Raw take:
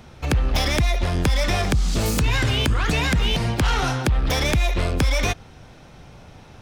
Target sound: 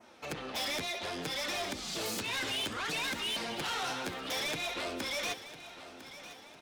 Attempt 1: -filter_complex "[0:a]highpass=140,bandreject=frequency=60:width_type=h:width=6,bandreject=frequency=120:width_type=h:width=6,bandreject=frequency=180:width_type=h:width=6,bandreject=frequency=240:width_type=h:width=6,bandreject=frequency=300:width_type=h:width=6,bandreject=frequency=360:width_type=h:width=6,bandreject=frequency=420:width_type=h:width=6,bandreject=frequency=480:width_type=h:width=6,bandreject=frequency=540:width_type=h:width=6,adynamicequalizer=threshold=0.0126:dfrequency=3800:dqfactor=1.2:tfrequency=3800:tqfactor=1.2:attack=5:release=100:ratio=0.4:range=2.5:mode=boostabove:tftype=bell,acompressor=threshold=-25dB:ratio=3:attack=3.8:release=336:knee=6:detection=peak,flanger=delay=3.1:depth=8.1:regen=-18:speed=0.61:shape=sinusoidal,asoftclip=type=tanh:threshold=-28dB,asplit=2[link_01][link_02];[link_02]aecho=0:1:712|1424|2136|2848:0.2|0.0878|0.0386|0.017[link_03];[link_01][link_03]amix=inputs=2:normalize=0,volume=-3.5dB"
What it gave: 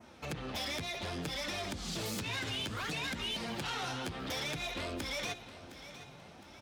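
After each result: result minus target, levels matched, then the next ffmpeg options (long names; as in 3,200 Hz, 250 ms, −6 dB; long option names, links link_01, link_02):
125 Hz band +9.0 dB; downward compressor: peak gain reduction +8 dB; echo 291 ms early
-filter_complex "[0:a]highpass=310,bandreject=frequency=60:width_type=h:width=6,bandreject=frequency=120:width_type=h:width=6,bandreject=frequency=180:width_type=h:width=6,bandreject=frequency=240:width_type=h:width=6,bandreject=frequency=300:width_type=h:width=6,bandreject=frequency=360:width_type=h:width=6,bandreject=frequency=420:width_type=h:width=6,bandreject=frequency=480:width_type=h:width=6,bandreject=frequency=540:width_type=h:width=6,adynamicequalizer=threshold=0.0126:dfrequency=3800:dqfactor=1.2:tfrequency=3800:tqfactor=1.2:attack=5:release=100:ratio=0.4:range=2.5:mode=boostabove:tftype=bell,acompressor=threshold=-25dB:ratio=3:attack=3.8:release=336:knee=6:detection=peak,flanger=delay=3.1:depth=8.1:regen=-18:speed=0.61:shape=sinusoidal,asoftclip=type=tanh:threshold=-28dB,asplit=2[link_01][link_02];[link_02]aecho=0:1:712|1424|2136|2848:0.2|0.0878|0.0386|0.017[link_03];[link_01][link_03]amix=inputs=2:normalize=0,volume=-3.5dB"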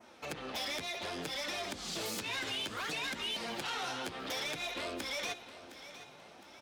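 downward compressor: peak gain reduction +8 dB; echo 291 ms early
-filter_complex "[0:a]highpass=310,bandreject=frequency=60:width_type=h:width=6,bandreject=frequency=120:width_type=h:width=6,bandreject=frequency=180:width_type=h:width=6,bandreject=frequency=240:width_type=h:width=6,bandreject=frequency=300:width_type=h:width=6,bandreject=frequency=360:width_type=h:width=6,bandreject=frequency=420:width_type=h:width=6,bandreject=frequency=480:width_type=h:width=6,bandreject=frequency=540:width_type=h:width=6,adynamicequalizer=threshold=0.0126:dfrequency=3800:dqfactor=1.2:tfrequency=3800:tqfactor=1.2:attack=5:release=100:ratio=0.4:range=2.5:mode=boostabove:tftype=bell,flanger=delay=3.1:depth=8.1:regen=-18:speed=0.61:shape=sinusoidal,asoftclip=type=tanh:threshold=-28dB,asplit=2[link_01][link_02];[link_02]aecho=0:1:712|1424|2136|2848:0.2|0.0878|0.0386|0.017[link_03];[link_01][link_03]amix=inputs=2:normalize=0,volume=-3.5dB"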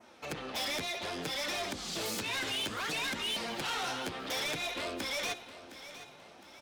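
echo 291 ms early
-filter_complex "[0:a]highpass=310,bandreject=frequency=60:width_type=h:width=6,bandreject=frequency=120:width_type=h:width=6,bandreject=frequency=180:width_type=h:width=6,bandreject=frequency=240:width_type=h:width=6,bandreject=frequency=300:width_type=h:width=6,bandreject=frequency=360:width_type=h:width=6,bandreject=frequency=420:width_type=h:width=6,bandreject=frequency=480:width_type=h:width=6,bandreject=frequency=540:width_type=h:width=6,adynamicequalizer=threshold=0.0126:dfrequency=3800:dqfactor=1.2:tfrequency=3800:tqfactor=1.2:attack=5:release=100:ratio=0.4:range=2.5:mode=boostabove:tftype=bell,flanger=delay=3.1:depth=8.1:regen=-18:speed=0.61:shape=sinusoidal,asoftclip=type=tanh:threshold=-28dB,asplit=2[link_01][link_02];[link_02]aecho=0:1:1003|2006|3009|4012:0.2|0.0878|0.0386|0.017[link_03];[link_01][link_03]amix=inputs=2:normalize=0,volume=-3.5dB"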